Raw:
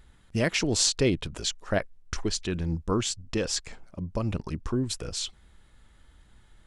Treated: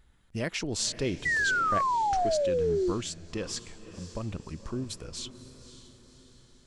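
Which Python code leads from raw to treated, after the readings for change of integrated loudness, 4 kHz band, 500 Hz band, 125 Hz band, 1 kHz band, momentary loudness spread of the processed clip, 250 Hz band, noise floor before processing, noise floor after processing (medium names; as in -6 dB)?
-0.5 dB, -6.0 dB, +1.0 dB, -6.5 dB, +11.5 dB, 16 LU, -5.0 dB, -57 dBFS, -60 dBFS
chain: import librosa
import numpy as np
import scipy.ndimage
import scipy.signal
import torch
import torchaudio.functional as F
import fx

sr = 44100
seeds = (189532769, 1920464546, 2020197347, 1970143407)

y = fx.echo_diffused(x, sr, ms=547, feedback_pct=49, wet_db=-13)
y = fx.spec_paint(y, sr, seeds[0], shape='fall', start_s=1.25, length_s=1.67, low_hz=340.0, high_hz=2000.0, level_db=-20.0)
y = y * librosa.db_to_amplitude(-6.5)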